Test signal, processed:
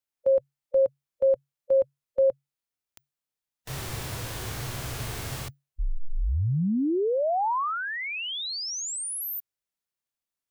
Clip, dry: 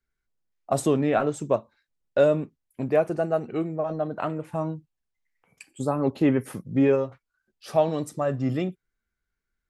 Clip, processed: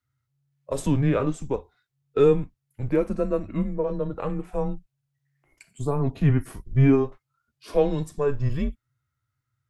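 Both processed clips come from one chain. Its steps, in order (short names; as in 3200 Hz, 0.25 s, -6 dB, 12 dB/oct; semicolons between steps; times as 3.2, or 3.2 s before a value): frequency shift -140 Hz; harmonic-percussive split percussive -8 dB; gain +3.5 dB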